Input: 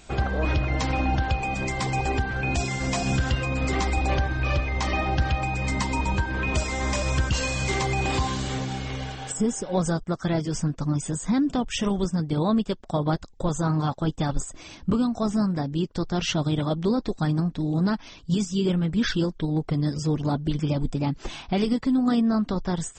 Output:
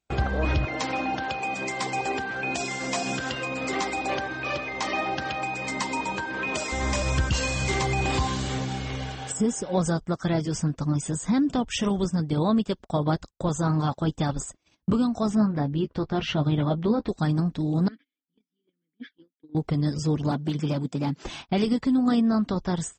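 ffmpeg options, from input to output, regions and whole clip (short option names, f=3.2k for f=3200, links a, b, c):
-filter_complex "[0:a]asettb=1/sr,asplit=3[a][b][c];[a]atrim=end=0.654[d];[b]atrim=start=0.65:end=6.72,asetpts=PTS-STARTPTS,afade=t=in:d=0.004:c=qsin,afade=t=out:st=6.066:d=0.004:c=qsin,highpass=270,aecho=1:1:160:0.0794,atrim=end_sample=267687[e];[c]atrim=start=6.716[f];[d][e]acrossfade=d=0.004:c1=hsin:c2=qsin[g];[g][f]acrossfade=d=0.004:c1=qsin:c2=hsin,asettb=1/sr,asplit=3[h][i][j];[h]atrim=end=15.354[k];[i]atrim=start=15.35:end=17.08,asetpts=PTS-STARTPTS,afade=t=in:d=0.004:c=qsin,afade=t=out:st=1.726:d=0.004:c=qsin,lowpass=3k,asplit=2[l][m];[m]adelay=14,volume=-9dB[n];[l][n]amix=inputs=2:normalize=0,atrim=end_sample=76293[o];[j]atrim=start=17.076[p];[k][o]acrossfade=d=0.004:c1=hsin:c2=qsin[q];[q][p]acrossfade=d=0.004:c1=qsin:c2=hsin,asettb=1/sr,asplit=3[r][s][t];[r]atrim=end=17.884[u];[s]atrim=start=17.88:end=19.55,asetpts=PTS-STARTPTS,afade=t=in:d=0.004:c=qsin,afade=t=out:st=1.666:d=0.004:c=qsin,acompressor=threshold=-28dB:ratio=2.5:attack=3.2:release=140:knee=1:detection=peak,asplit=3[v][w][x];[v]bandpass=f=270:t=q:w=8,volume=0dB[y];[w]bandpass=f=2.29k:t=q:w=8,volume=-6dB[z];[x]bandpass=f=3.01k:t=q:w=8,volume=-9dB[aa];[y][z][aa]amix=inputs=3:normalize=0,highpass=f=150:w=0.5412,highpass=f=150:w=1.3066,equalizer=f=200:t=q:w=4:g=-7,equalizer=f=470:t=q:w=4:g=9,equalizer=f=1.2k:t=q:w=4:g=7,equalizer=f=1.7k:t=q:w=4:g=8,equalizer=f=2.6k:t=q:w=4:g=-5,lowpass=f=5.1k:w=0.5412,lowpass=f=5.1k:w=1.3066[ab];[t]atrim=start=19.546[ac];[u][ab]acrossfade=d=0.004:c1=hsin:c2=qsin[ad];[ad][ac]acrossfade=d=0.004:c1=qsin:c2=hsin,asettb=1/sr,asplit=3[ae][af][ag];[ae]atrim=end=20.314[ah];[af]atrim=start=20.31:end=21.24,asetpts=PTS-STARTPTS,afade=t=in:d=0.004:c=qsin,afade=t=out:st=0.926:d=0.004:c=qsin,highpass=f=130:w=0.5412,highpass=f=130:w=1.3066,asoftclip=type=hard:threshold=-19.5dB[ai];[ag]atrim=start=21.236[aj];[ah][ai]acrossfade=d=0.004:c1=hsin:c2=qsin[ak];[ak][aj]acrossfade=d=0.004:c1=qsin:c2=hsin,highpass=41,agate=range=-34dB:threshold=-39dB:ratio=16:detection=peak"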